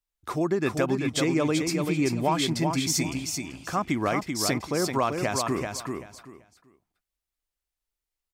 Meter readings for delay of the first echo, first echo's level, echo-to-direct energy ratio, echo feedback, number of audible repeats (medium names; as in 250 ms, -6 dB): 386 ms, -5.0 dB, -5.0 dB, 21%, 3